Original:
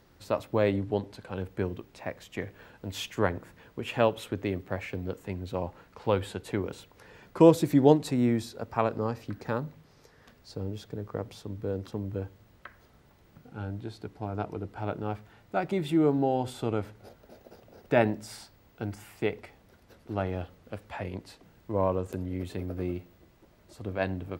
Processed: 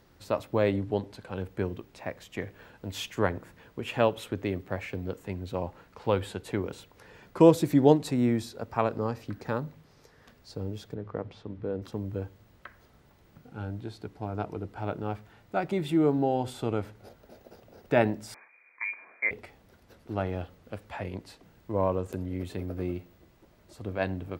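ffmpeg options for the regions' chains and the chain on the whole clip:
ffmpeg -i in.wav -filter_complex "[0:a]asettb=1/sr,asplit=3[link_01][link_02][link_03];[link_01]atrim=end=10.944[link_04];[link_02]atrim=start=10.94:end=11.82,asetpts=PTS-STARTPTS,afade=type=in:duration=0.004:curve=qsin,afade=type=out:start_time=0.876:duration=0.004:curve=qsin,lowpass=3100,bandreject=frequency=50:width_type=h:width=6,bandreject=frequency=100:width_type=h:width=6,bandreject=frequency=150:width_type=h:width=6[link_05];[link_03]atrim=start=11.816[link_06];[link_04][link_05]acrossfade=duration=0.004:curve1=hsin:curve2=qsin[link_07];[link_07][link_06]acrossfade=duration=0.004:curve1=qsin:curve2=hsin,asettb=1/sr,asplit=3[link_08][link_09][link_10];[link_08]atrim=end=18.344[link_11];[link_09]atrim=start=18.34:end=19.31,asetpts=PTS-STARTPTS,afade=type=in:duration=0.004:curve=qsin,afade=type=out:start_time=0.966:duration=0.004:curve=qsin,lowpass=frequency=2100:width_type=q:width=0.5098,lowpass=frequency=2100:width_type=q:width=0.6013,lowpass=frequency=2100:width_type=q:width=0.9,lowpass=frequency=2100:width_type=q:width=2.563,afreqshift=-2500,highpass=frequency=200:width=0.5412,highpass=frequency=200:width=1.3066[link_12];[link_10]atrim=start=19.306[link_13];[link_11][link_12]acrossfade=duration=0.004:curve1=hsin:curve2=qsin[link_14];[link_14][link_13]acrossfade=duration=0.004:curve1=qsin:curve2=hsin" out.wav

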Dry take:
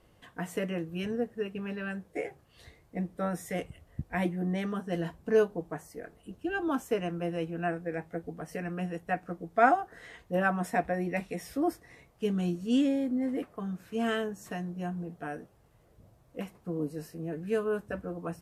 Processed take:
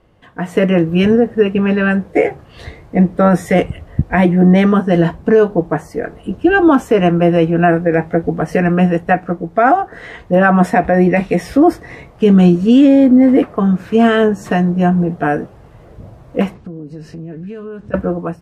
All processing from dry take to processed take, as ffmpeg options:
ffmpeg -i in.wav -filter_complex "[0:a]asettb=1/sr,asplit=3[link_01][link_02][link_03];[link_01]atrim=end=16.544[link_04];[link_02]atrim=start=16.54:end=17.94,asetpts=PTS-STARTPTS,afade=type=in:duration=0.004:curve=qsin,afade=type=out:start_time=1.396:duration=0.004:curve=qsin,lowpass=6000,equalizer=frequency=840:width=0.49:gain=-9.5,acompressor=threshold=-49dB:ratio=8:attack=3.2:release=140:knee=1:detection=peak[link_05];[link_03]atrim=start=17.936[link_06];[link_04][link_05]acrossfade=duration=0.004:curve1=hsin:curve2=qsin[link_07];[link_07][link_06]acrossfade=duration=0.004:curve1=qsin:curve2=hsin,aemphasis=mode=reproduction:type=75kf,dynaudnorm=framelen=220:gausssize=5:maxgain=14dB,alimiter=level_in=10dB:limit=-1dB:release=50:level=0:latency=1,volume=-1dB" out.wav

